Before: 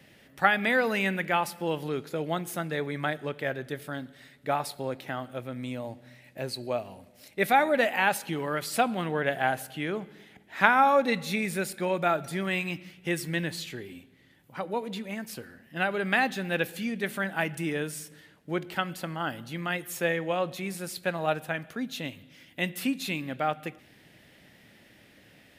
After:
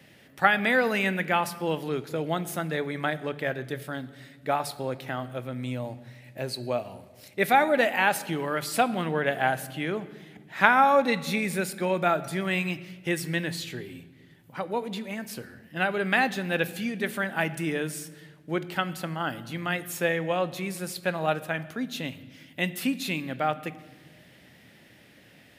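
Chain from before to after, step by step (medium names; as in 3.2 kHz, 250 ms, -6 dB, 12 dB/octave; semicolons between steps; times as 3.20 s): high-pass 57 Hz; on a send: tone controls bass +7 dB, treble +1 dB + reverberation RT60 1.4 s, pre-delay 15 ms, DRR 17 dB; on the sum: trim +1.5 dB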